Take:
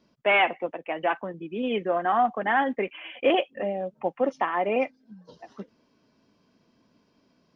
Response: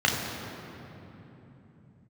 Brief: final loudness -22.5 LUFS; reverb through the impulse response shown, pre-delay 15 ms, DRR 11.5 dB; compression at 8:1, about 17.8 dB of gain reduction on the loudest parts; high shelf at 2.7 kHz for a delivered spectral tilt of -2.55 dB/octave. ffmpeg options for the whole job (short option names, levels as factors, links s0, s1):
-filter_complex "[0:a]highshelf=f=2700:g=4.5,acompressor=threshold=0.0178:ratio=8,asplit=2[s0][s1];[1:a]atrim=start_sample=2205,adelay=15[s2];[s1][s2]afir=irnorm=-1:irlink=0,volume=0.0422[s3];[s0][s3]amix=inputs=2:normalize=0,volume=7.08"